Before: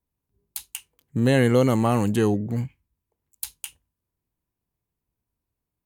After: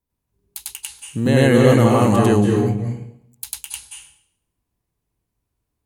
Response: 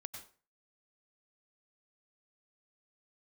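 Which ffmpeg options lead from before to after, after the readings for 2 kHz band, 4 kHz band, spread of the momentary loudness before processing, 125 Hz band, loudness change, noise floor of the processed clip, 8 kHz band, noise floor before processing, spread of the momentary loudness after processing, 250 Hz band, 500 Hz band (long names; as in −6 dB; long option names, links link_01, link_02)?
+6.0 dB, +6.5 dB, 20 LU, +6.5 dB, +6.5 dB, −79 dBFS, +7.0 dB, −85 dBFS, 19 LU, +6.0 dB, +6.5 dB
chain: -filter_complex "[0:a]asplit=2[link_01][link_02];[1:a]atrim=start_sample=2205,asetrate=22932,aresample=44100,adelay=98[link_03];[link_02][link_03]afir=irnorm=-1:irlink=0,volume=5dB[link_04];[link_01][link_04]amix=inputs=2:normalize=0"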